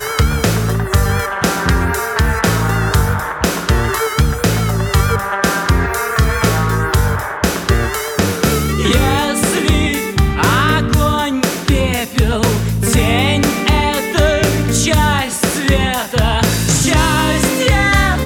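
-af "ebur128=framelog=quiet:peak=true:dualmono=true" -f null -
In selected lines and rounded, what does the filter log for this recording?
Integrated loudness:
  I:         -11.7 LUFS
  Threshold: -21.6 LUFS
Loudness range:
  LRA:         1.8 LU
  Threshold: -31.8 LUFS
  LRA low:   -12.6 LUFS
  LRA high:  -10.8 LUFS
True peak:
  Peak:       -1.6 dBFS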